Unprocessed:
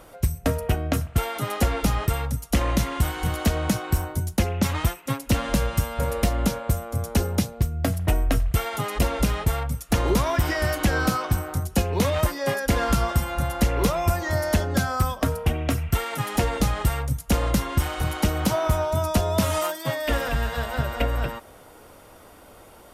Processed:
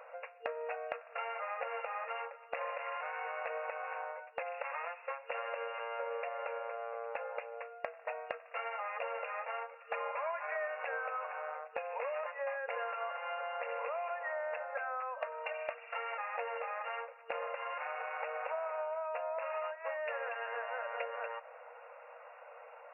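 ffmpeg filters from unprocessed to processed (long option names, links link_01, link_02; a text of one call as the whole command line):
ffmpeg -i in.wav -filter_complex "[0:a]asettb=1/sr,asplit=3[link_01][link_02][link_03];[link_01]atrim=end=9.844[link_04];[link_02]atrim=start=9.84:end=10.68,asetpts=PTS-STARTPTS,afade=type=in:duration=0.004:curve=qsin,afade=type=out:start_time=0.836:duration=0.004:curve=qsin,aecho=1:1:4.9:0.92,atrim=end_sample=37044[link_05];[link_03]atrim=start=10.676[link_06];[link_04][link_05]acrossfade=duration=0.004:curve1=hsin:curve2=qsin[link_07];[link_07][link_06]acrossfade=duration=0.004:curve1=qsin:curve2=hsin,asettb=1/sr,asplit=3[link_08][link_09][link_10];[link_08]atrim=end=15.144[link_11];[link_09]atrim=start=15.14:end=15.75,asetpts=PTS-STARTPTS,afade=type=in:duration=0.004:curve=qsin,afade=type=out:start_time=0.606:duration=0.004:curve=qsin,aecho=1:1:3.3:0.69,atrim=end_sample=26901[link_12];[link_10]atrim=start=15.746[link_13];[link_11][link_12]acrossfade=duration=0.004:curve1=hsin:curve2=qsin[link_14];[link_14][link_13]acrossfade=duration=0.004:curve1=qsin:curve2=hsin,afftfilt=real='re*between(b*sr/4096,460,2800)':imag='im*between(b*sr/4096,460,2800)':win_size=4096:overlap=0.75,acompressor=threshold=-35dB:ratio=4,volume=-2dB" out.wav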